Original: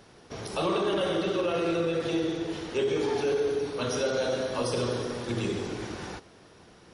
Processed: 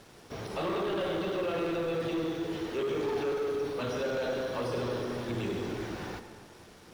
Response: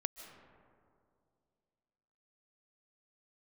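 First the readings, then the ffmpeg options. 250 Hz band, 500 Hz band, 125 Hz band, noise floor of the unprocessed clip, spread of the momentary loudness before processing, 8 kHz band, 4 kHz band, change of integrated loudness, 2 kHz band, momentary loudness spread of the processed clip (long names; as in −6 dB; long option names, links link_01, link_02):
−3.5 dB, −3.5 dB, −3.5 dB, −54 dBFS, 9 LU, −9.5 dB, −6.0 dB, −4.0 dB, −3.0 dB, 11 LU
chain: -filter_complex "[0:a]asoftclip=type=tanh:threshold=-27.5dB,acrossover=split=3800[link_01][link_02];[link_02]acompressor=threshold=-54dB:ratio=4:attack=1:release=60[link_03];[link_01][link_03]amix=inputs=2:normalize=0,acrusher=bits=8:mix=0:aa=0.5,asplit=2[link_04][link_05];[1:a]atrim=start_sample=2205,asetrate=61740,aresample=44100[link_06];[link_05][link_06]afir=irnorm=-1:irlink=0,volume=6.5dB[link_07];[link_04][link_07]amix=inputs=2:normalize=0,volume=-7.5dB"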